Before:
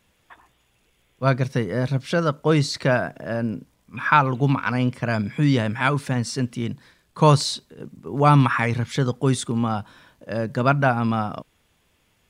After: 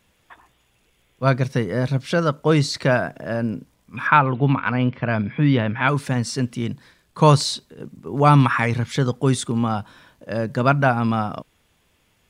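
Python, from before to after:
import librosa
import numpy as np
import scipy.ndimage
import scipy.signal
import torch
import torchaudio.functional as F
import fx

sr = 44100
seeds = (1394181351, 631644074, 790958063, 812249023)

y = fx.lowpass(x, sr, hz=3500.0, slope=24, at=(4.07, 5.89))
y = y * 10.0 ** (1.5 / 20.0)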